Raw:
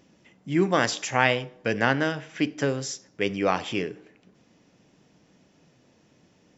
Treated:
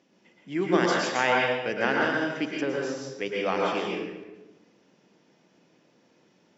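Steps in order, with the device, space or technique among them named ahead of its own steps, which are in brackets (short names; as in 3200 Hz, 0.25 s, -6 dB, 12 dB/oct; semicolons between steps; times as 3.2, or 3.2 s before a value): supermarket ceiling speaker (BPF 230–6200 Hz; reverb RT60 1.1 s, pre-delay 0.103 s, DRR -2 dB); 2.61–3.26 high shelf 4700 Hz -8.5 dB; gain -4.5 dB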